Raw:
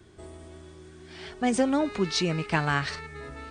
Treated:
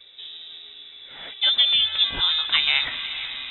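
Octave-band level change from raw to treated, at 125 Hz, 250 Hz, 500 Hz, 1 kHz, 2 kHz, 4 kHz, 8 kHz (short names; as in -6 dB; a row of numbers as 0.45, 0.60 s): under -15 dB, under -20 dB, -17.5 dB, -6.0 dB, +5.0 dB, +18.5 dB, under -40 dB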